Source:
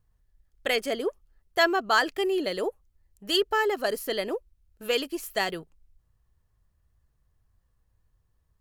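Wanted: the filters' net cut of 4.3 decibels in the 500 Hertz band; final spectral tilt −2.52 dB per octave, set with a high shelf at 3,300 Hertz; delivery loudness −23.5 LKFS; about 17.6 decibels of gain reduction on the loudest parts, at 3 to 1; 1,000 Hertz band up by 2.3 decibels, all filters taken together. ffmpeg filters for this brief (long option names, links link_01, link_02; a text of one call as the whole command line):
ffmpeg -i in.wav -af "equalizer=frequency=500:width_type=o:gain=-7.5,equalizer=frequency=1000:width_type=o:gain=5,highshelf=frequency=3300:gain=5,acompressor=threshold=-40dB:ratio=3,volume=16.5dB" out.wav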